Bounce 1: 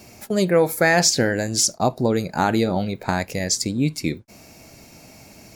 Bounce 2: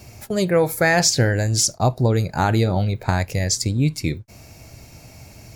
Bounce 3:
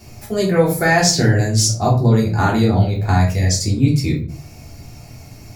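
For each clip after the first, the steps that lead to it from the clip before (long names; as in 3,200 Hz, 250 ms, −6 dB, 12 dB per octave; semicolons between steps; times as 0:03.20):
low shelf with overshoot 150 Hz +8.5 dB, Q 1.5
rectangular room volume 280 cubic metres, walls furnished, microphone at 3.3 metres; level −3.5 dB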